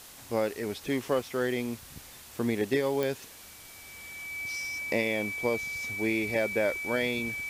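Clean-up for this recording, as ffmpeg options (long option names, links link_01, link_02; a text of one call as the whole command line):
ffmpeg -i in.wav -af "adeclick=threshold=4,bandreject=frequency=2300:width=30,afwtdn=0.004" out.wav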